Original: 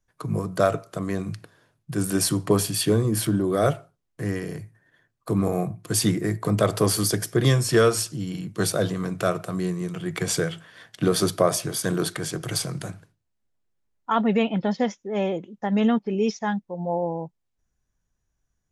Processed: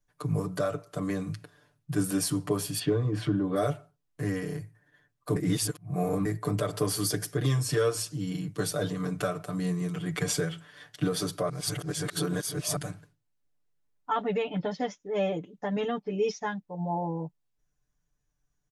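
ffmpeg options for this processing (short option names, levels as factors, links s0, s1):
-filter_complex "[0:a]asettb=1/sr,asplit=3[s0][s1][s2];[s0]atrim=end=2.794[s3];[s1]atrim=start=2.79:end=3.56,asetpts=PTS-STARTPTS,afade=t=in:d=0.004:c=qsin,afade=t=out:st=0.766:d=0.004:c=qsin,lowpass=3100[s4];[s2]atrim=start=3.556[s5];[s3][s4]acrossfade=d=0.004:c1=hsin:c2=qsin[s6];[s6][s5]acrossfade=d=0.004:c1=qsin:c2=hsin,asplit=5[s7][s8][s9][s10][s11];[s7]atrim=end=5.362[s12];[s8]atrim=start=5.358:end=6.252,asetpts=PTS-STARTPTS,areverse[s13];[s9]atrim=start=6.248:end=11.492[s14];[s10]atrim=start=11.488:end=12.762,asetpts=PTS-STARTPTS,areverse[s15];[s11]atrim=start=12.758[s16];[s12][s13]acrossfade=d=0.004:c1=hsin:c2=hsin[s17];[s17][s14]acrossfade=d=0.004:c1=hsin:c2=hsin[s18];[s18][s15]acrossfade=d=0.004:c1=hsin:c2=hsin[s19];[s19][s16]acrossfade=d=0.004:c1=hsin:c2=hsin,alimiter=limit=0.168:level=0:latency=1:release=424,aecho=1:1:6.8:0.96,volume=0.562"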